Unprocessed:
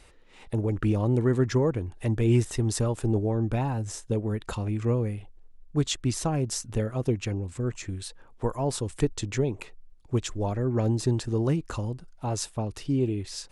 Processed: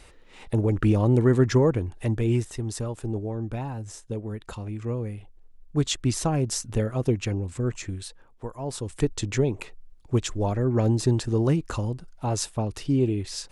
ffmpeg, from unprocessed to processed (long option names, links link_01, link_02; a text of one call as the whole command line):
ffmpeg -i in.wav -af "volume=22.5dB,afade=type=out:start_time=1.74:duration=0.75:silence=0.375837,afade=type=in:start_time=4.89:duration=1.15:silence=0.446684,afade=type=out:start_time=7.77:duration=0.73:silence=0.281838,afade=type=in:start_time=8.5:duration=0.76:silence=0.266073" out.wav